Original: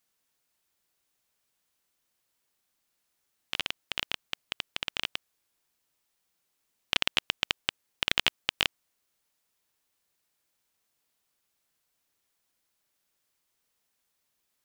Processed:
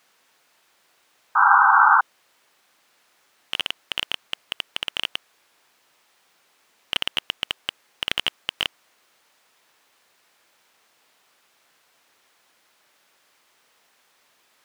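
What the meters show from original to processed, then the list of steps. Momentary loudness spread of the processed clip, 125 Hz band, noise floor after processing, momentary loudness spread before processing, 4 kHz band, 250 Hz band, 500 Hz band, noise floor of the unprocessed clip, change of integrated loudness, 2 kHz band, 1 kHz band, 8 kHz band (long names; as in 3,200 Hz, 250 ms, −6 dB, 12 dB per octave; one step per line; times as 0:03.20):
16 LU, −1.5 dB, −64 dBFS, 10 LU, +4.0 dB, +0.5 dB, +2.0 dB, −78 dBFS, +9.0 dB, +11.0 dB, +24.0 dB, +1.0 dB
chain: mid-hump overdrive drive 29 dB, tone 1,900 Hz, clips at −4 dBFS
sound drawn into the spectrogram noise, 0:01.35–0:02.01, 770–1,600 Hz −16 dBFS
level +1.5 dB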